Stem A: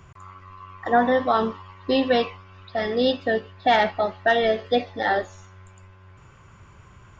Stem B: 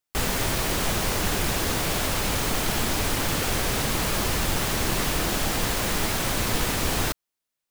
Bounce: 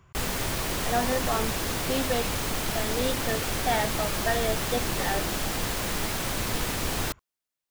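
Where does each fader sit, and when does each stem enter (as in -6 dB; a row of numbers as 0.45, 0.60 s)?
-8.5, -4.0 dB; 0.00, 0.00 s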